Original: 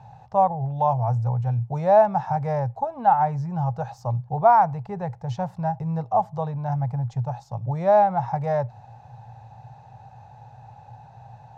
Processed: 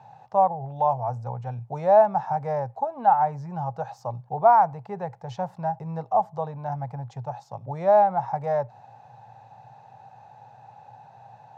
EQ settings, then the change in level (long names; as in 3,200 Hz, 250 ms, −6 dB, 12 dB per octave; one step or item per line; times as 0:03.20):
high-pass filter 180 Hz 12 dB per octave
dynamic equaliser 2,800 Hz, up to −4 dB, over −39 dBFS, Q 0.71
bass and treble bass −3 dB, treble −3 dB
0.0 dB